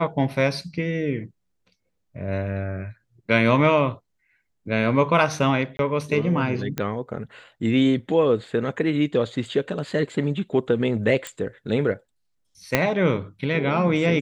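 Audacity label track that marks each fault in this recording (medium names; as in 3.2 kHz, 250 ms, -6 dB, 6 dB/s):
5.770000	5.790000	dropout 22 ms
6.780000	6.780000	pop -11 dBFS
11.270000	11.270000	pop
12.750000	12.750000	pop -3 dBFS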